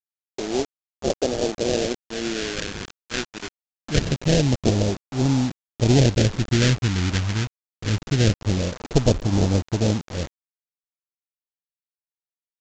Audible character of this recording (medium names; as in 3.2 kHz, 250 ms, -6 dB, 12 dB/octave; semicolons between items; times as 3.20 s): aliases and images of a low sample rate 1.1 kHz, jitter 20%; phasing stages 2, 0.24 Hz, lowest notch 590–1700 Hz; a quantiser's noise floor 6-bit, dither none; µ-law